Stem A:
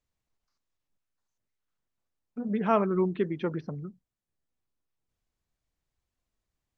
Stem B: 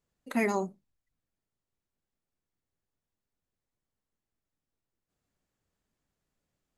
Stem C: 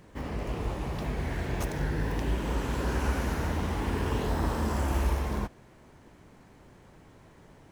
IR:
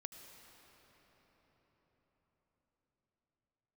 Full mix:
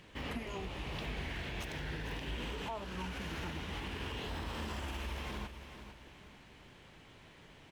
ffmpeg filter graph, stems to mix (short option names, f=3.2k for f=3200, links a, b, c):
-filter_complex "[0:a]equalizer=f=920:t=o:w=0.34:g=10,asplit=2[a][b];[b]afreqshift=0.46[c];[a][c]amix=inputs=2:normalize=1,volume=-10dB[d];[1:a]acompressor=threshold=-30dB:ratio=6,asplit=2[e][f];[f]adelay=7.1,afreqshift=1.2[g];[e][g]amix=inputs=2:normalize=1,volume=-2.5dB[h];[2:a]equalizer=f=3k:w=0.95:g=14.5,alimiter=level_in=1dB:limit=-24dB:level=0:latency=1:release=143,volume=-1dB,volume=-5.5dB,asplit=2[i][j];[j]volume=-11dB,aecho=0:1:450|900|1350|1800|2250:1|0.34|0.116|0.0393|0.0134[k];[d][h][i][k]amix=inputs=4:normalize=0,alimiter=level_in=6.5dB:limit=-24dB:level=0:latency=1:release=468,volume=-6.5dB"